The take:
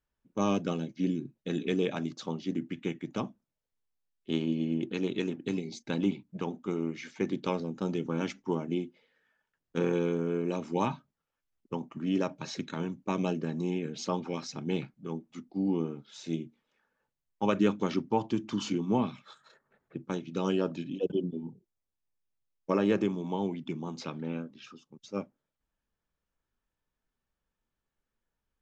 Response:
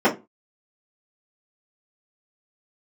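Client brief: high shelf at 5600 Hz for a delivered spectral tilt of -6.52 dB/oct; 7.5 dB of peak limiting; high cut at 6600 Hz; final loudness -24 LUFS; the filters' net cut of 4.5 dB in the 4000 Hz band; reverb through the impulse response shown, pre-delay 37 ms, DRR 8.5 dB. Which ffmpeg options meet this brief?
-filter_complex "[0:a]lowpass=6.6k,equalizer=f=4k:t=o:g=-3,highshelf=f=5.6k:g=-7.5,alimiter=limit=-21dB:level=0:latency=1,asplit=2[a][b];[1:a]atrim=start_sample=2205,adelay=37[c];[b][c]afir=irnorm=-1:irlink=0,volume=-29dB[d];[a][d]amix=inputs=2:normalize=0,volume=9dB"

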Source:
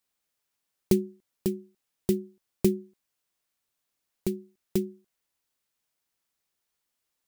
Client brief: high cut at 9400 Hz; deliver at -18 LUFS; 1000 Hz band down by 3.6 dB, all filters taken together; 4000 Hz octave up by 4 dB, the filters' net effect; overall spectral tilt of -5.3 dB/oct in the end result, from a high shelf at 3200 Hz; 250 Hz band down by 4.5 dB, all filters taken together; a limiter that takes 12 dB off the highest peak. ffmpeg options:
-af "lowpass=9.4k,equalizer=f=250:t=o:g=-7,equalizer=f=1k:t=o:g=-4.5,highshelf=f=3.2k:g=-4,equalizer=f=4k:t=o:g=8.5,volume=22dB,alimiter=limit=-1.5dB:level=0:latency=1"

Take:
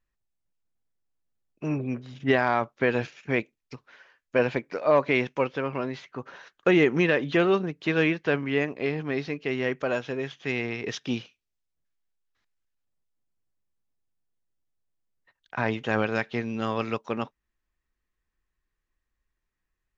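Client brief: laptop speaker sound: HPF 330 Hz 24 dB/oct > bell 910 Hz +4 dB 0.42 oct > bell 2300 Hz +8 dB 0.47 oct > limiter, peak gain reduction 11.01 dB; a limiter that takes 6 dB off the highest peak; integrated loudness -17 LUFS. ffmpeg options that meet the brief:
-af "alimiter=limit=-14.5dB:level=0:latency=1,highpass=f=330:w=0.5412,highpass=f=330:w=1.3066,equalizer=f=910:t=o:w=0.42:g=4,equalizer=f=2.3k:t=o:w=0.47:g=8,volume=17.5dB,alimiter=limit=-6dB:level=0:latency=1"

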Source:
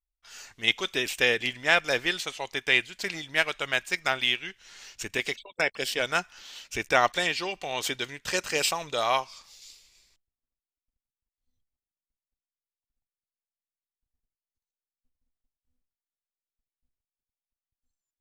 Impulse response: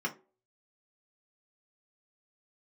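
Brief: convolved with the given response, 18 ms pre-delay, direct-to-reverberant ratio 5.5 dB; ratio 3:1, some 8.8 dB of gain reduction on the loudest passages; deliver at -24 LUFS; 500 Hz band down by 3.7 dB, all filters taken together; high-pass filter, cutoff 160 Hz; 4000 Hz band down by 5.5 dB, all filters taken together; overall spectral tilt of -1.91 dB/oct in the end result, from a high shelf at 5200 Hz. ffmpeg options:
-filter_complex "[0:a]highpass=160,equalizer=f=500:t=o:g=-4.5,equalizer=f=4k:t=o:g=-6,highshelf=f=5.2k:g=-3.5,acompressor=threshold=-30dB:ratio=3,asplit=2[a][b];[1:a]atrim=start_sample=2205,adelay=18[c];[b][c]afir=irnorm=-1:irlink=0,volume=-11dB[d];[a][d]amix=inputs=2:normalize=0,volume=9.5dB"

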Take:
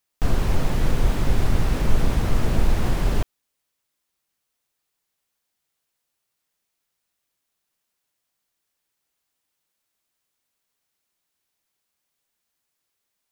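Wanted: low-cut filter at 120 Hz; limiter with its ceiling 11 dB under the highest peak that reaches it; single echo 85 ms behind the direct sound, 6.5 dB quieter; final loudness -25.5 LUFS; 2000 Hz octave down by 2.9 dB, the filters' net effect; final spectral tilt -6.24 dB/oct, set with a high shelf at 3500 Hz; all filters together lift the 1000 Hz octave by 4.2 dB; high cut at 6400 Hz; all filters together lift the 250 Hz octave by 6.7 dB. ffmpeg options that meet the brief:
-af "highpass=120,lowpass=6.4k,equalizer=f=250:t=o:g=9,equalizer=f=1k:t=o:g=6,equalizer=f=2k:t=o:g=-8,highshelf=f=3.5k:g=6.5,alimiter=limit=-22dB:level=0:latency=1,aecho=1:1:85:0.473,volume=4.5dB"

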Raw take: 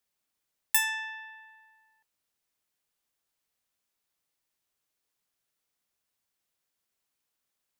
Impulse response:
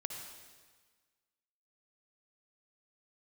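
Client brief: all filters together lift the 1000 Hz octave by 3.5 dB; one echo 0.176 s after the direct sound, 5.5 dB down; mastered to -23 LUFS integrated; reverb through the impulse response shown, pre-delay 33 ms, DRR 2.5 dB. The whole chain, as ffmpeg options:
-filter_complex "[0:a]equalizer=f=1k:t=o:g=4,aecho=1:1:176:0.531,asplit=2[a][b];[1:a]atrim=start_sample=2205,adelay=33[c];[b][c]afir=irnorm=-1:irlink=0,volume=-2dB[d];[a][d]amix=inputs=2:normalize=0,volume=2dB"

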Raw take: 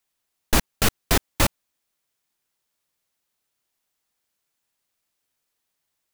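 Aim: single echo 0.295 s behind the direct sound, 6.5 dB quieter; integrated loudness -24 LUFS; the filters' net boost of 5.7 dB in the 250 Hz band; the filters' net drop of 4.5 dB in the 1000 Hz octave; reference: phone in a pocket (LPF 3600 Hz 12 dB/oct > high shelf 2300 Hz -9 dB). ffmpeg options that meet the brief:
-af "lowpass=3.6k,equalizer=f=250:t=o:g=7.5,equalizer=f=1k:t=o:g=-4.5,highshelf=f=2.3k:g=-9,aecho=1:1:295:0.473,volume=1.5dB"

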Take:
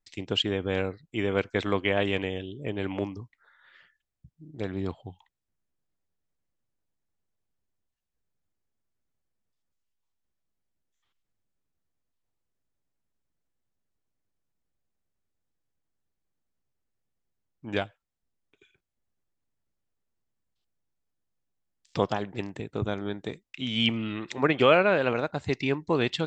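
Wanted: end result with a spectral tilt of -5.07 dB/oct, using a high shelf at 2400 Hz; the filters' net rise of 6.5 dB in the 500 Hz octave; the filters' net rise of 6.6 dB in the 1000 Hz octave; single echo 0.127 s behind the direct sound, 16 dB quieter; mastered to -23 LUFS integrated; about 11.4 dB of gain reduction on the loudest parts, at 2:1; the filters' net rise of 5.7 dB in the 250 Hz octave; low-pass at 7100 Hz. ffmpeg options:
-af "lowpass=7.1k,equalizer=f=250:t=o:g=5.5,equalizer=f=500:t=o:g=4.5,equalizer=f=1k:t=o:g=8.5,highshelf=f=2.4k:g=-7,acompressor=threshold=-30dB:ratio=2,aecho=1:1:127:0.158,volume=8dB"

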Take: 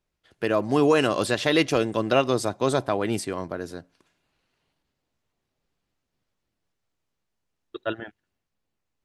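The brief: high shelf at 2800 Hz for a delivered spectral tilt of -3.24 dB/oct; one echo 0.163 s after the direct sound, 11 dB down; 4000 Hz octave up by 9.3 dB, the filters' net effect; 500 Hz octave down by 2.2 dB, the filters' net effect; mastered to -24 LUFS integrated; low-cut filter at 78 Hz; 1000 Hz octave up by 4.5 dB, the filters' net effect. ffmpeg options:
-af "highpass=78,equalizer=f=500:t=o:g=-4.5,equalizer=f=1k:t=o:g=6,highshelf=f=2.8k:g=4.5,equalizer=f=4k:t=o:g=8,aecho=1:1:163:0.282,volume=-2.5dB"

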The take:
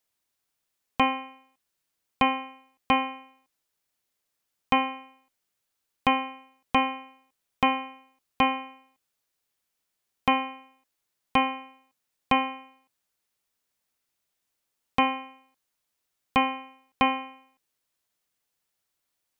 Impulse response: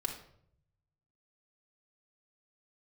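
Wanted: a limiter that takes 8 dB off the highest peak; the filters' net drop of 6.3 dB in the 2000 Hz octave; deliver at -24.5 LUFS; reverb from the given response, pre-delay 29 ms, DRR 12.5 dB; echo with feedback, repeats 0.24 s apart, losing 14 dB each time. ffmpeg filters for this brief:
-filter_complex "[0:a]equalizer=f=2k:t=o:g=-8,alimiter=limit=-17.5dB:level=0:latency=1,aecho=1:1:240|480:0.2|0.0399,asplit=2[a][b];[1:a]atrim=start_sample=2205,adelay=29[c];[b][c]afir=irnorm=-1:irlink=0,volume=-14dB[d];[a][d]amix=inputs=2:normalize=0,volume=9dB"

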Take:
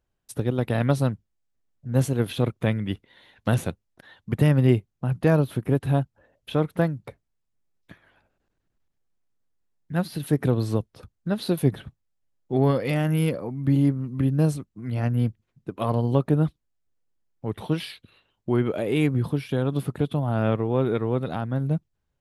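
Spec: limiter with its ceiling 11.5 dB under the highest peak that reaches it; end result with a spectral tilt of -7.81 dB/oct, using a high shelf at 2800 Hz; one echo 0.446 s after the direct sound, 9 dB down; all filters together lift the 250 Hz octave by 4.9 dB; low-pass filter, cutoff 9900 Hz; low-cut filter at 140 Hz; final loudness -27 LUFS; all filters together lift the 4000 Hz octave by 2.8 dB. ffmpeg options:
-af "highpass=140,lowpass=9.9k,equalizer=f=250:t=o:g=7,highshelf=f=2.8k:g=-6.5,equalizer=f=4k:t=o:g=8.5,alimiter=limit=-16dB:level=0:latency=1,aecho=1:1:446:0.355"

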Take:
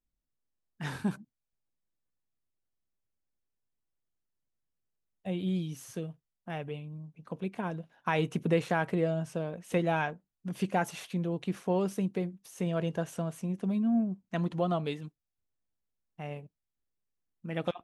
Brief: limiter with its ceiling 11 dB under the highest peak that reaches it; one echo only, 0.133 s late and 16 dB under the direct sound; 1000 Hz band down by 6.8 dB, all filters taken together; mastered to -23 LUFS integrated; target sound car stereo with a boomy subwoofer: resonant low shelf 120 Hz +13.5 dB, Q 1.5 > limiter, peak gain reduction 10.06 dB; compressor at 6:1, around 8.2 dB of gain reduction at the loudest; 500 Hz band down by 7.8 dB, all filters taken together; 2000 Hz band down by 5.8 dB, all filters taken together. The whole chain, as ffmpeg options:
-af "equalizer=f=500:t=o:g=-7.5,equalizer=f=1k:t=o:g=-4.5,equalizer=f=2k:t=o:g=-5.5,acompressor=threshold=-35dB:ratio=6,alimiter=level_in=10dB:limit=-24dB:level=0:latency=1,volume=-10dB,lowshelf=f=120:t=q:w=1.5:g=13.5,aecho=1:1:133:0.158,volume=25.5dB,alimiter=limit=-14.5dB:level=0:latency=1"

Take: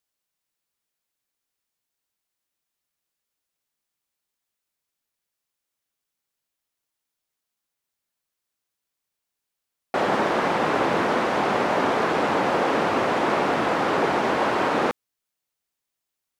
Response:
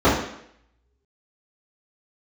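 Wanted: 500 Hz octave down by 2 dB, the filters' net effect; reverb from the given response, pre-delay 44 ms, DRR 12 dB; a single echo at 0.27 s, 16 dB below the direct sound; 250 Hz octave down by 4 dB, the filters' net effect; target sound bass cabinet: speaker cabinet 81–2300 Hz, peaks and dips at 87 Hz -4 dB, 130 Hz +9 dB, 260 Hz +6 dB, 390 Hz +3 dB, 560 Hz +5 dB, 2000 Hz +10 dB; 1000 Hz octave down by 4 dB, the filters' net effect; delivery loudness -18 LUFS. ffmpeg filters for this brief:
-filter_complex "[0:a]equalizer=f=250:t=o:g=-9,equalizer=f=500:t=o:g=-3.5,equalizer=f=1k:t=o:g=-4.5,aecho=1:1:270:0.158,asplit=2[a][b];[1:a]atrim=start_sample=2205,adelay=44[c];[b][c]afir=irnorm=-1:irlink=0,volume=-35.5dB[d];[a][d]amix=inputs=2:normalize=0,highpass=f=81:w=0.5412,highpass=f=81:w=1.3066,equalizer=f=87:t=q:w=4:g=-4,equalizer=f=130:t=q:w=4:g=9,equalizer=f=260:t=q:w=4:g=6,equalizer=f=390:t=q:w=4:g=3,equalizer=f=560:t=q:w=4:g=5,equalizer=f=2k:t=q:w=4:g=10,lowpass=f=2.3k:w=0.5412,lowpass=f=2.3k:w=1.3066,volume=5.5dB"

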